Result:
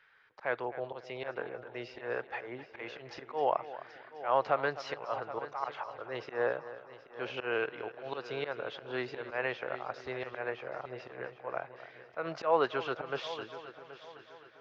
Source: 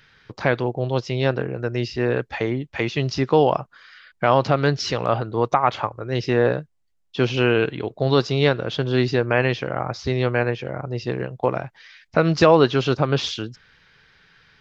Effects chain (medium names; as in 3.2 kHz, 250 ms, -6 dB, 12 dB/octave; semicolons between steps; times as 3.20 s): three-band isolator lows -21 dB, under 470 Hz, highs -17 dB, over 2.5 kHz; slow attack 134 ms; on a send: multi-head delay 259 ms, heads first and third, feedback 50%, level -15 dB; on the sum: trim -6.5 dB